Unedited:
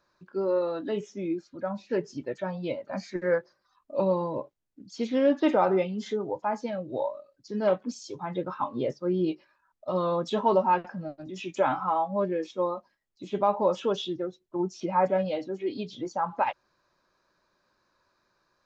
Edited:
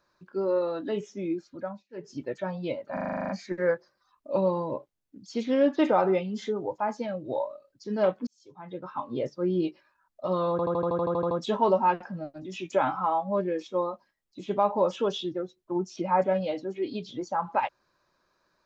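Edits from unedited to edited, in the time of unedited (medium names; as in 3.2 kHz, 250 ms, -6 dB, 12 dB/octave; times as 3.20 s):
1.58–2.18 s: dip -23.5 dB, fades 0.26 s
2.93 s: stutter 0.04 s, 10 plays
7.91–8.99 s: fade in
10.15 s: stutter 0.08 s, 11 plays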